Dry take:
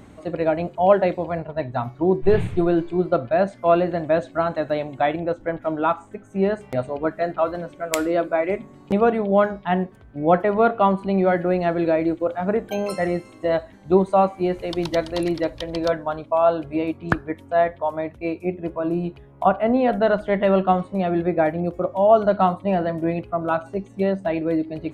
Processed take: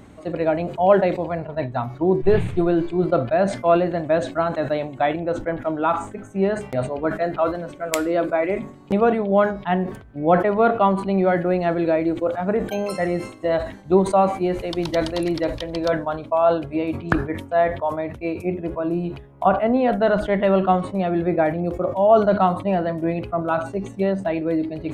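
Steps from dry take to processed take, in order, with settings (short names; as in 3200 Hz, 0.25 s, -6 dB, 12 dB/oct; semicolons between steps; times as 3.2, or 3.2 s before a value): sustainer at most 110 dB/s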